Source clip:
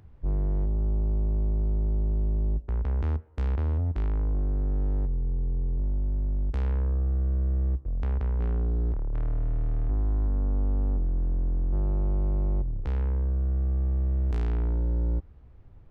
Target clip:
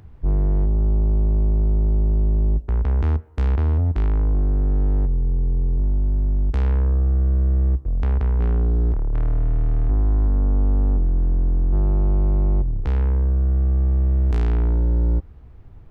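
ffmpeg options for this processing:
-af "bandreject=f=550:w=12,volume=2.37"

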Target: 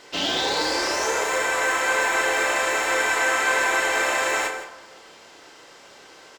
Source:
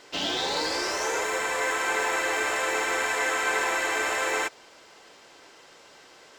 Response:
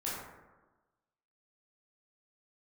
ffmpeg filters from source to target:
-filter_complex "[0:a]asplit=2[s0][s1];[s1]adelay=29,volume=0.473[s2];[s0][s2]amix=inputs=2:normalize=0,aecho=1:1:164:0.211,asplit=2[s3][s4];[1:a]atrim=start_sample=2205,adelay=38[s5];[s4][s5]afir=irnorm=-1:irlink=0,volume=0.224[s6];[s3][s6]amix=inputs=2:normalize=0,volume=1.41"

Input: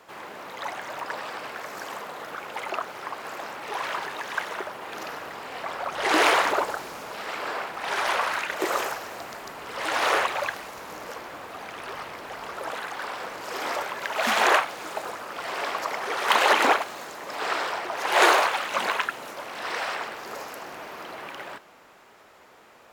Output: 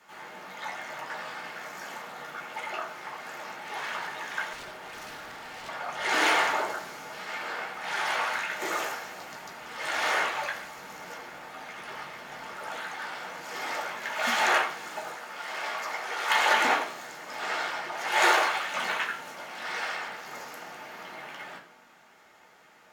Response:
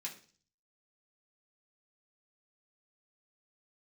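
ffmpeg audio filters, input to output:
-filter_complex "[0:a]asettb=1/sr,asplit=3[s0][s1][s2];[s0]atrim=end=15.074[s3];[s1]atrim=start=15.07:end=16.44,asetpts=PTS-STARTPTS,afade=t=in:d=0.004:c=qsin,afade=t=out:st=1.366:d=0.004:c=qsin,highpass=f=310:p=1[s4];[s2]atrim=start=16.436[s5];[s3][s4]acrossfade=d=0.004:c1=hsin:c2=qsin[s6];[s6][s5]acrossfade=d=0.004:c1=qsin:c2=hsin[s7];[1:a]atrim=start_sample=2205,asetrate=37485,aresample=44100[s8];[s7][s8]afir=irnorm=-1:irlink=0,asettb=1/sr,asplit=3[s9][s10][s11];[s9]atrim=end=4.534[s12];[s10]atrim=start=4.53:end=5.69,asetpts=PTS-STARTPTS,afade=t=in:d=0.004:c=qsin,afade=t=out:st=1.156:d=0.004:c=qsin,aeval=exprs='0.02*(abs(mod(val(0)/0.02+3,4)-2)-1)':c=same[s13];[s11]atrim=start=5.686[s14];[s12][s13]acrossfade=d=0.004:c1=hsin:c2=qsin[s15];[s15][s14]acrossfade=d=0.004:c1=qsin:c2=hsin,volume=0.75"

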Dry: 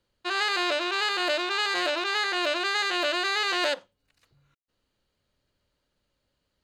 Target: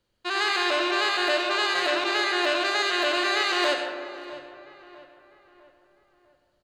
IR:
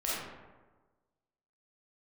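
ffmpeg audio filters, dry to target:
-filter_complex "[0:a]asplit=2[s0][s1];[s1]adelay=652,lowpass=f=2500:p=1,volume=0.158,asplit=2[s2][s3];[s3]adelay=652,lowpass=f=2500:p=1,volume=0.46,asplit=2[s4][s5];[s5]adelay=652,lowpass=f=2500:p=1,volume=0.46,asplit=2[s6][s7];[s7]adelay=652,lowpass=f=2500:p=1,volume=0.46[s8];[s0][s2][s4][s6][s8]amix=inputs=5:normalize=0,asplit=2[s9][s10];[1:a]atrim=start_sample=2205,asetrate=24696,aresample=44100[s11];[s10][s11]afir=irnorm=-1:irlink=0,volume=0.299[s12];[s9][s12]amix=inputs=2:normalize=0,volume=0.794"

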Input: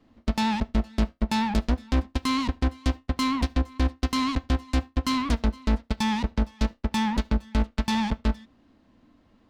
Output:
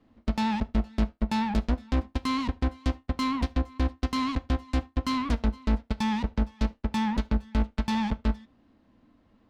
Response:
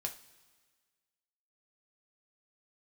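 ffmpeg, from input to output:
-filter_complex "[0:a]highshelf=f=4300:g=-7,asplit=2[s0][s1];[1:a]atrim=start_sample=2205,atrim=end_sample=3528[s2];[s1][s2]afir=irnorm=-1:irlink=0,volume=0.299[s3];[s0][s3]amix=inputs=2:normalize=0,volume=0.631"

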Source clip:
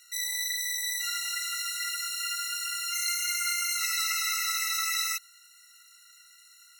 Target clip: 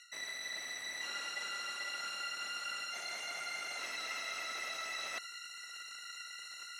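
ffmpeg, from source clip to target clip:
-af "areverse,acompressor=threshold=0.00562:ratio=12,areverse,crystalizer=i=6.5:c=0,asoftclip=type=hard:threshold=0.0251,highpass=370,lowpass=2300,volume=2.37"

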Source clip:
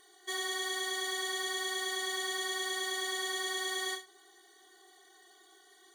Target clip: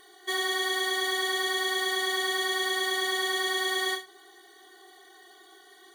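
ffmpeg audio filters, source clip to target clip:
-af "equalizer=f=7200:w=1.3:g=-8,volume=2.51"

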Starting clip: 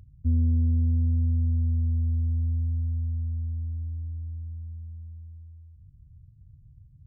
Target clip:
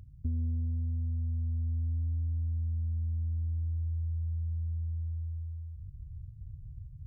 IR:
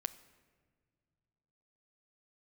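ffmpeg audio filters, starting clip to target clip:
-af "asubboost=boost=2.5:cutoff=150,acompressor=threshold=0.0282:ratio=6"

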